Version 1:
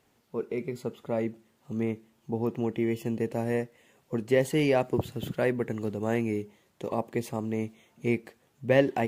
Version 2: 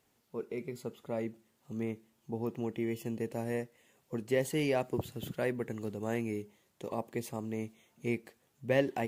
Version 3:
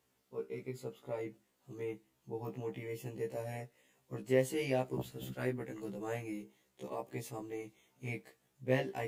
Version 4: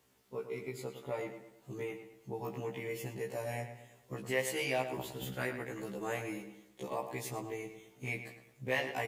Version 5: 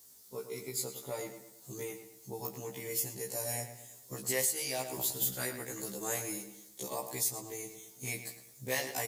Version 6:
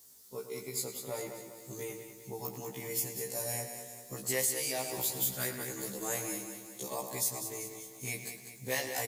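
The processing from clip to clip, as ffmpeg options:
-af "highshelf=f=4800:g=6.5,volume=0.473"
-af "flanger=delay=2.2:depth=6.2:regen=-76:speed=0.55:shape=triangular,afftfilt=real='re*1.73*eq(mod(b,3),0)':imag='im*1.73*eq(mod(b,3),0)':win_size=2048:overlap=0.75,volume=1.5"
-filter_complex "[0:a]acrossover=split=700[s0][s1];[s0]acompressor=threshold=0.00501:ratio=6[s2];[s2][s1]amix=inputs=2:normalize=0,asplit=2[s3][s4];[s4]adelay=109,lowpass=f=3800:p=1,volume=0.355,asplit=2[s5][s6];[s6]adelay=109,lowpass=f=3800:p=1,volume=0.43,asplit=2[s7][s8];[s8]adelay=109,lowpass=f=3800:p=1,volume=0.43,asplit=2[s9][s10];[s10]adelay=109,lowpass=f=3800:p=1,volume=0.43,asplit=2[s11][s12];[s12]adelay=109,lowpass=f=3800:p=1,volume=0.43[s13];[s3][s5][s7][s9][s11][s13]amix=inputs=6:normalize=0,volume=2"
-af "aexciter=amount=9.1:drive=2.5:freq=4000,alimiter=limit=0.141:level=0:latency=1:release=498,volume=0.841"
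-af "aecho=1:1:197|394|591|788|985|1182:0.355|0.185|0.0959|0.0499|0.0259|0.0135"

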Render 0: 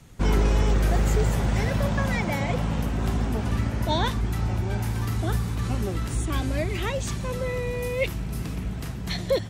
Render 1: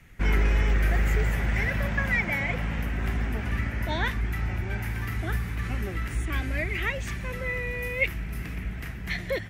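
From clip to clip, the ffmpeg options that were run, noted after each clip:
-af "equalizer=f=125:t=o:w=1:g=-6,equalizer=f=250:t=o:w=1:g=-4,equalizer=f=500:t=o:w=1:g=-5,equalizer=f=1000:t=o:w=1:g=-7,equalizer=f=2000:t=o:w=1:g=11,equalizer=f=4000:t=o:w=1:g=-8,equalizer=f=8000:t=o:w=1:g=-9"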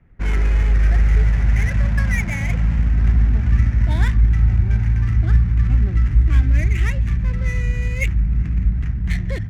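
-af "adynamicsmooth=sensitivity=7:basefreq=1000,asubboost=boost=7:cutoff=180"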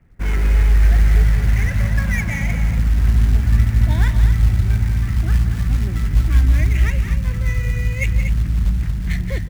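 -filter_complex "[0:a]acrusher=bits=7:mode=log:mix=0:aa=0.000001,asplit=2[s0][s1];[s1]aecho=0:1:172|236.2:0.282|0.355[s2];[s0][s2]amix=inputs=2:normalize=0"

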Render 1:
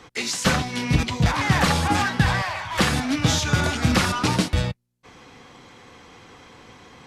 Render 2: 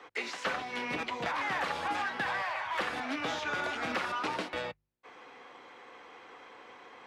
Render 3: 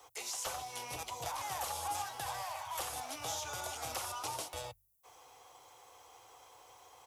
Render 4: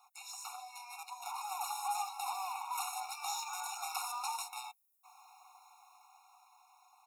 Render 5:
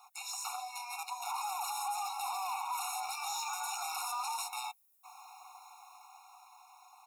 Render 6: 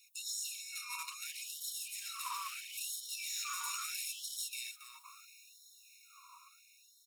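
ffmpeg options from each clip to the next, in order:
-filter_complex "[0:a]acrossover=split=340 3000:gain=0.0708 1 0.2[s0][s1][s2];[s0][s1][s2]amix=inputs=3:normalize=0,acrossover=split=150|2700|6200[s3][s4][s5][s6];[s3]acompressor=threshold=0.002:ratio=4[s7];[s4]acompressor=threshold=0.0316:ratio=4[s8];[s5]acompressor=threshold=0.00794:ratio=4[s9];[s6]acompressor=threshold=0.00126:ratio=4[s10];[s7][s8][s9][s10]amix=inputs=4:normalize=0,bandreject=f=50.08:t=h:w=4,bandreject=f=100.16:t=h:w=4,bandreject=f=150.24:t=h:w=4,volume=0.794"
-af "firequalizer=gain_entry='entry(110,0);entry(200,-27);entry(330,-17);entry(770,-6);entry(1700,-21);entry(3200,-8);entry(11000,6)':delay=0.05:min_phase=1,aexciter=amount=4.2:drive=1.5:freq=5600,volume=1.5"
-filter_complex "[0:a]dynaudnorm=f=230:g=13:m=2,asplit=2[s0][s1];[s1]aeval=exprs='val(0)*gte(abs(val(0)),0.0224)':c=same,volume=0.251[s2];[s0][s2]amix=inputs=2:normalize=0,afftfilt=real='re*eq(mod(floor(b*sr/1024/720),2),1)':imag='im*eq(mod(floor(b*sr/1024/720),2),1)':win_size=1024:overlap=0.75,volume=0.596"
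-af "alimiter=level_in=3.55:limit=0.0631:level=0:latency=1:release=23,volume=0.282,volume=2.11"
-af "volume=59.6,asoftclip=hard,volume=0.0168,aecho=1:1:277|554|831:0.251|0.0578|0.0133,afftfilt=real='re*gte(b*sr/1024,930*pow(3000/930,0.5+0.5*sin(2*PI*0.75*pts/sr)))':imag='im*gte(b*sr/1024,930*pow(3000/930,0.5+0.5*sin(2*PI*0.75*pts/sr)))':win_size=1024:overlap=0.75,volume=1.26"

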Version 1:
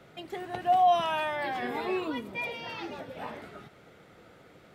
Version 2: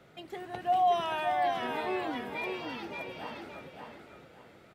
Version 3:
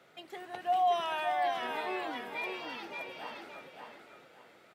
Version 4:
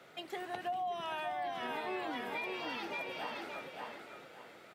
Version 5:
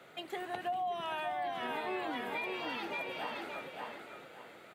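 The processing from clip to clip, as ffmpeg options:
-af "aecho=1:1:574|1148|1722|2296:0.596|0.167|0.0467|0.0131,volume=0.668"
-af "highpass=f=570:p=1"
-filter_complex "[0:a]acrossover=split=260[s0][s1];[s1]acompressor=threshold=0.01:ratio=10[s2];[s0][s2]amix=inputs=2:normalize=0,volume=1.58"
-af "equalizer=f=5400:w=3.7:g=-7.5,volume=1.19"

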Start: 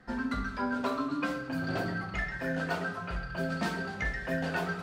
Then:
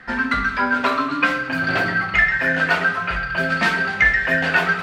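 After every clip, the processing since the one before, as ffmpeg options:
-af "equalizer=f=2100:t=o:w=2:g=14.5,volume=2"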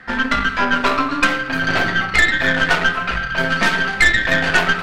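-af "aeval=exprs='0.668*(cos(1*acos(clip(val(0)/0.668,-1,1)))-cos(1*PI/2))+0.0944*(cos(6*acos(clip(val(0)/0.668,-1,1)))-cos(6*PI/2))':c=same,volume=1.19"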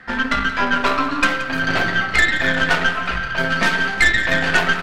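-af "aecho=1:1:175|350|525|700|875:0.188|0.102|0.0549|0.0297|0.016,volume=0.841"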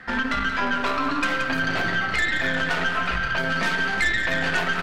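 -af "alimiter=limit=0.237:level=0:latency=1:release=81"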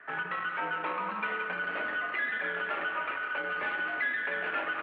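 -af "highpass=f=380:t=q:w=0.5412,highpass=f=380:t=q:w=1.307,lowpass=f=2900:t=q:w=0.5176,lowpass=f=2900:t=q:w=0.7071,lowpass=f=2900:t=q:w=1.932,afreqshift=-85,volume=0.398"

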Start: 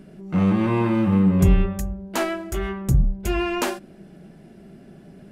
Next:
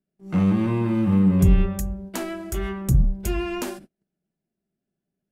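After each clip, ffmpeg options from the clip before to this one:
-filter_complex "[0:a]agate=range=0.0126:threshold=0.0141:ratio=16:detection=peak,highshelf=f=5400:g=8,acrossover=split=330[s0][s1];[s1]acompressor=threshold=0.0282:ratio=6[s2];[s0][s2]amix=inputs=2:normalize=0"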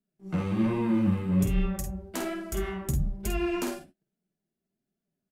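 -filter_complex "[0:a]acrossover=split=1700[s0][s1];[s0]alimiter=limit=0.15:level=0:latency=1[s2];[s2][s1]amix=inputs=2:normalize=0,flanger=delay=4.3:depth=8.5:regen=29:speed=1.2:shape=sinusoidal,aecho=1:1:49|63:0.501|0.178"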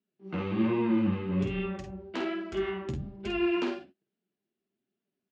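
-af "highpass=120,equalizer=f=160:t=q:w=4:g=-10,equalizer=f=380:t=q:w=4:g=4,equalizer=f=640:t=q:w=4:g=-4,equalizer=f=2800:t=q:w=4:g=4,lowpass=f=4200:w=0.5412,lowpass=f=4200:w=1.3066"

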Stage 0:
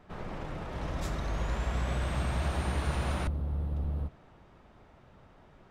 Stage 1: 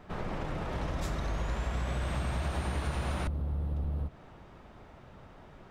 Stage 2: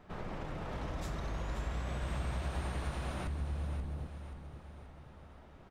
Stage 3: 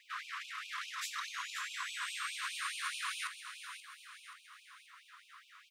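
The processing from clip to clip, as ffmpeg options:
-af "acompressor=threshold=0.0158:ratio=3,volume=1.78"
-af "aecho=1:1:530|1060|1590|2120|2650:0.355|0.17|0.0817|0.0392|0.0188,volume=0.531"
-af "afftfilt=real='re*gte(b*sr/1024,960*pow(2400/960,0.5+0.5*sin(2*PI*4.8*pts/sr)))':imag='im*gte(b*sr/1024,960*pow(2400/960,0.5+0.5*sin(2*PI*4.8*pts/sr)))':win_size=1024:overlap=0.75,volume=3.35"

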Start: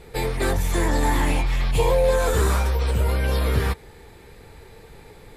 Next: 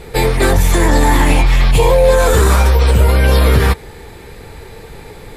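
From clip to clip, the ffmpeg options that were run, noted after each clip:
-af "alimiter=level_in=4.22:limit=0.891:release=50:level=0:latency=1,volume=0.891"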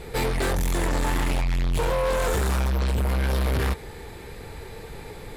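-af "asoftclip=type=tanh:threshold=0.158,volume=0.562"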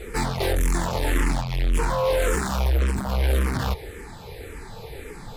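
-filter_complex "[0:a]asplit=2[s0][s1];[s1]afreqshift=-1.8[s2];[s0][s2]amix=inputs=2:normalize=1,volume=1.58"

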